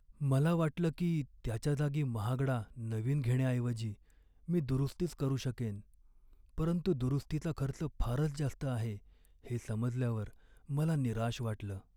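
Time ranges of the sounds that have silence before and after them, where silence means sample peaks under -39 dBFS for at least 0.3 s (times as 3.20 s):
4.49–5.77 s
6.58–8.95 s
9.50–10.28 s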